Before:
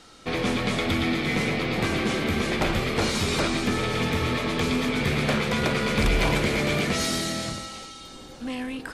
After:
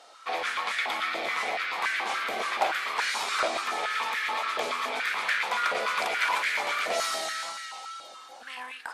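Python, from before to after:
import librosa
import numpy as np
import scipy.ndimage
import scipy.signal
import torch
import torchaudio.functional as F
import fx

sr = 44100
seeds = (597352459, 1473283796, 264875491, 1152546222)

y = fx.wow_flutter(x, sr, seeds[0], rate_hz=2.1, depth_cents=31.0)
y = fx.filter_held_highpass(y, sr, hz=7.0, low_hz=650.0, high_hz=1700.0)
y = F.gain(torch.from_numpy(y), -4.5).numpy()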